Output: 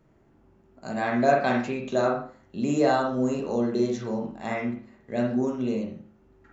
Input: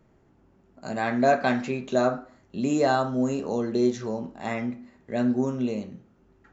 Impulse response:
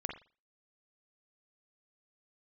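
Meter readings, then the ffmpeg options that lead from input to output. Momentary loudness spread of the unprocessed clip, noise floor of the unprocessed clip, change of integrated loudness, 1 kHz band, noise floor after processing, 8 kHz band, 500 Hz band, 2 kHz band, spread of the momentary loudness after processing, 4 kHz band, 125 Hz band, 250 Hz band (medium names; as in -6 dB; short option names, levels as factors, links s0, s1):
13 LU, -61 dBFS, -0.5 dB, 0.0 dB, -60 dBFS, no reading, 0.0 dB, 0.0 dB, 12 LU, -1.0 dB, -0.5 dB, -0.5 dB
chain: -filter_complex "[1:a]atrim=start_sample=2205[s0];[0:a][s0]afir=irnorm=-1:irlink=0"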